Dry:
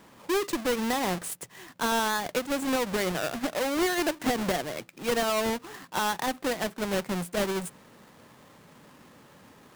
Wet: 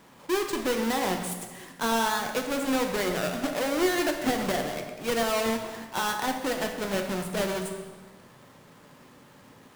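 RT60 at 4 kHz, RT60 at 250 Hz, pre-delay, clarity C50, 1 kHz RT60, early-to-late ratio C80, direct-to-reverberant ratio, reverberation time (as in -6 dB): 1.1 s, 1.7 s, 6 ms, 6.0 dB, 1.3 s, 7.5 dB, 3.5 dB, 1.4 s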